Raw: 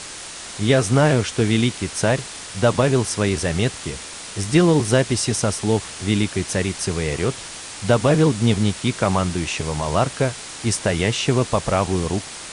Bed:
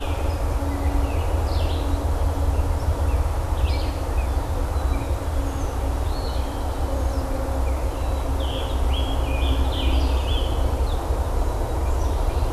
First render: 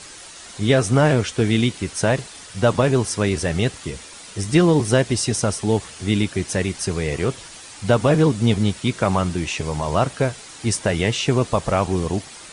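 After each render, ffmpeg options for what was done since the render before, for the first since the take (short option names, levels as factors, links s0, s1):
-af "afftdn=nr=8:nf=-35"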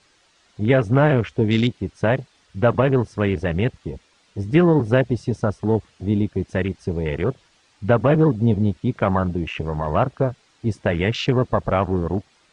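-af "lowpass=4900,afwtdn=0.0398"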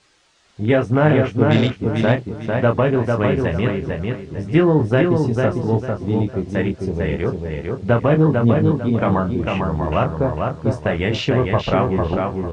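-filter_complex "[0:a]asplit=2[s0][s1];[s1]adelay=26,volume=0.447[s2];[s0][s2]amix=inputs=2:normalize=0,asplit=2[s3][s4];[s4]adelay=449,lowpass=f=4100:p=1,volume=0.668,asplit=2[s5][s6];[s6]adelay=449,lowpass=f=4100:p=1,volume=0.32,asplit=2[s7][s8];[s8]adelay=449,lowpass=f=4100:p=1,volume=0.32,asplit=2[s9][s10];[s10]adelay=449,lowpass=f=4100:p=1,volume=0.32[s11];[s3][s5][s7][s9][s11]amix=inputs=5:normalize=0"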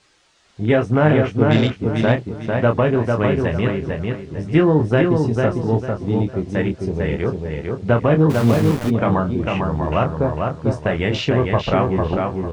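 -filter_complex "[0:a]asplit=3[s0][s1][s2];[s0]afade=t=out:st=8.29:d=0.02[s3];[s1]aeval=exprs='val(0)*gte(abs(val(0)),0.0708)':c=same,afade=t=in:st=8.29:d=0.02,afade=t=out:st=8.89:d=0.02[s4];[s2]afade=t=in:st=8.89:d=0.02[s5];[s3][s4][s5]amix=inputs=3:normalize=0"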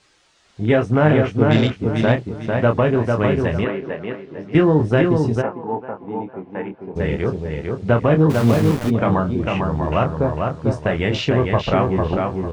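-filter_complex "[0:a]asettb=1/sr,asplit=3[s0][s1][s2];[s0]atrim=end=3.644[s3];[s1]atrim=start=3.64:end=4.55,asetpts=PTS-STARTPTS,afade=t=in:d=0.004:c=qsin,afade=t=out:st=0.906:d=0.004:c=qsin,highpass=260,lowpass=3000[s4];[s2]atrim=start=4.546[s5];[s3][s4]acrossfade=d=0.004:c1=hsin:c2=qsin[s6];[s6][s5]acrossfade=d=0.004:c1=qsin:c2=hsin,asplit=3[s7][s8][s9];[s7]afade=t=out:st=5.41:d=0.02[s10];[s8]highpass=340,equalizer=f=360:t=q:w=4:g=-7,equalizer=f=600:t=q:w=4:g=-8,equalizer=f=870:t=q:w=4:g=7,equalizer=f=1300:t=q:w=4:g=-5,equalizer=f=1900:t=q:w=4:g=-8,lowpass=f=2100:w=0.5412,lowpass=f=2100:w=1.3066,afade=t=in:st=5.41:d=0.02,afade=t=out:st=6.95:d=0.02[s11];[s9]afade=t=in:st=6.95:d=0.02[s12];[s10][s11][s12]amix=inputs=3:normalize=0"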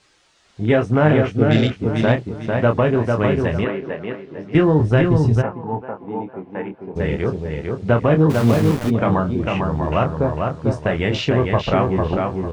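-filter_complex "[0:a]asettb=1/sr,asplit=3[s0][s1][s2];[s0]atrim=end=1.324[s3];[s1]atrim=start=1.32:end=1.72,asetpts=PTS-STARTPTS,afade=t=in:d=0.004:c=qsin,afade=t=out:st=0.396:d=0.004:c=qsin,equalizer=f=1000:w=5.1:g=-14.5[s4];[s2]atrim=start=1.716[s5];[s3][s4]acrossfade=d=0.004:c1=hsin:c2=qsin[s6];[s6][s5]acrossfade=d=0.004:c1=qsin:c2=hsin,asettb=1/sr,asplit=3[s7][s8][s9];[s7]atrim=end=4.464[s10];[s8]atrim=start=4.46:end=5.82,asetpts=PTS-STARTPTS,afade=t=in:d=0.004:c=qsin,afade=t=out:st=1.356:d=0.004:c=qsin,asubboost=boost=10:cutoff=150[s11];[s9]atrim=start=5.816[s12];[s10][s11]acrossfade=d=0.004:c1=hsin:c2=qsin[s13];[s13][s12]acrossfade=d=0.004:c1=qsin:c2=hsin"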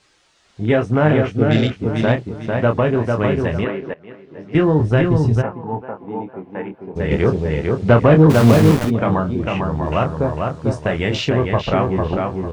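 -filter_complex "[0:a]asettb=1/sr,asplit=3[s0][s1][s2];[s0]atrim=end=7.114[s3];[s1]atrim=start=7.11:end=8.85,asetpts=PTS-STARTPTS,afade=t=in:d=0.004:c=qsin,afade=t=out:st=1.736:d=0.004:c=qsin,acontrast=50[s4];[s2]atrim=start=8.846[s5];[s3][s4]acrossfade=d=0.004:c1=hsin:c2=qsin[s6];[s6][s5]acrossfade=d=0.004:c1=qsin:c2=hsin,asettb=1/sr,asplit=3[s7][s8][s9];[s7]atrim=end=9.864[s10];[s8]atrim=start=9.86:end=11.3,asetpts=PTS-STARTPTS,afade=t=in:d=0.004:c=qsin,afade=t=out:st=1.436:d=0.004:c=qsin,highshelf=f=5800:g=7[s11];[s9]atrim=start=11.296[s12];[s10][s11]acrossfade=d=0.004:c1=hsin:c2=qsin[s13];[s13][s12]acrossfade=d=0.004:c1=qsin:c2=hsin,asplit=2[s14][s15];[s14]atrim=end=3.94,asetpts=PTS-STARTPTS,afade=t=out:st=3.936:d=0.004:c=hsin:silence=0.0944061[s16];[s15]atrim=start=3.94,asetpts=PTS-STARTPTS,afade=t=in:d=0.69:silence=0.0944061[s17];[s16][s17]concat=n=2:v=0:a=1"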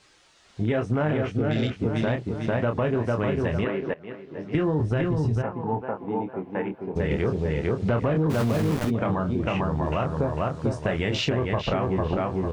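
-af "alimiter=limit=0.376:level=0:latency=1:release=27,acompressor=threshold=0.0794:ratio=4"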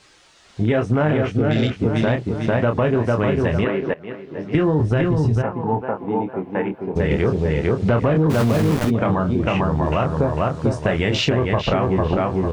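-af "volume=2"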